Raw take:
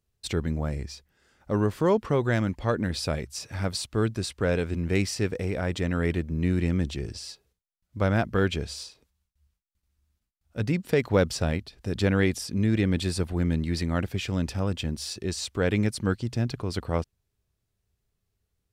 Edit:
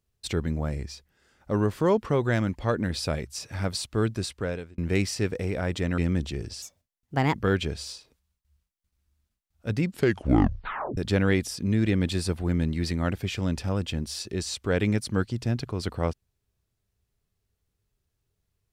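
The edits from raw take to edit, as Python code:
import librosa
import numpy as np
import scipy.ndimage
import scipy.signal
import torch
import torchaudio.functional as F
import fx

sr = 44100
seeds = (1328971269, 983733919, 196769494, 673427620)

y = fx.edit(x, sr, fx.fade_out_span(start_s=4.23, length_s=0.55),
    fx.cut(start_s=5.98, length_s=0.64),
    fx.speed_span(start_s=7.26, length_s=0.99, speed=1.37),
    fx.tape_stop(start_s=10.83, length_s=1.05), tone=tone)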